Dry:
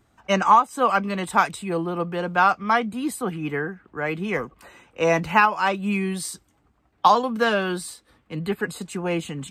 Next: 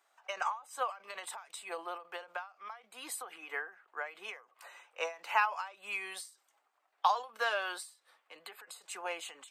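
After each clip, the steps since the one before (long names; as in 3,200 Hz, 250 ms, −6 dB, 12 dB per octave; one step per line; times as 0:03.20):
high-pass filter 610 Hz 24 dB per octave
downward compressor 1.5 to 1, threshold −31 dBFS, peak gain reduction 7.5 dB
every ending faded ahead of time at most 160 dB per second
level −4.5 dB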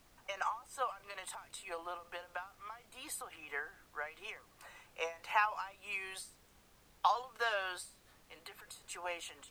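background noise pink −63 dBFS
level −2.5 dB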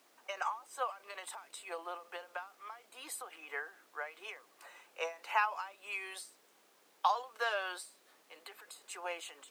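four-pole ladder high-pass 260 Hz, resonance 20%
level +5 dB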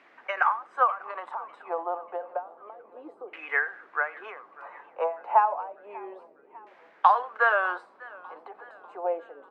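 auto-filter low-pass saw down 0.3 Hz 400–2,100 Hz
slap from a distant wall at 15 metres, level −22 dB
feedback echo with a swinging delay time 597 ms, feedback 53%, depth 102 cents, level −22 dB
level +8.5 dB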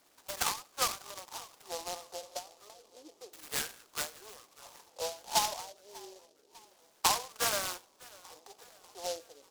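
short delay modulated by noise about 4,900 Hz, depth 0.15 ms
level −9 dB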